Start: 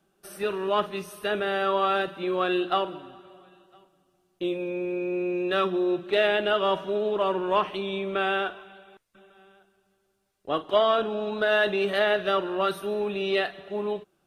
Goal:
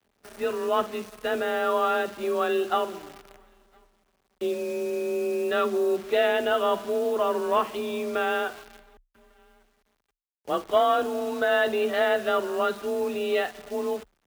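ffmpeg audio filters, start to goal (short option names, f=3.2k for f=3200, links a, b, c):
-af "aemphasis=mode=reproduction:type=75fm,acrusher=bits=8:dc=4:mix=0:aa=0.000001,afreqshift=30"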